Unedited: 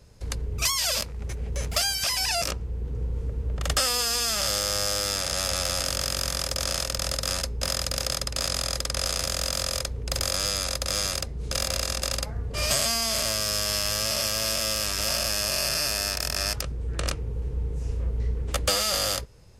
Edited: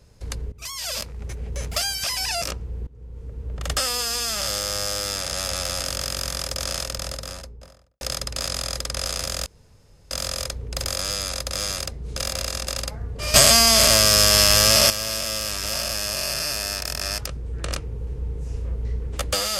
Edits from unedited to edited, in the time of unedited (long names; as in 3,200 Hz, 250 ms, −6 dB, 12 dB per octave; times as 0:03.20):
0:00.52–0:01.10: fade in, from −21 dB
0:02.87–0:03.74: fade in, from −21 dB
0:06.79–0:08.01: fade out and dull
0:09.46: splice in room tone 0.65 s
0:12.69–0:14.25: clip gain +11 dB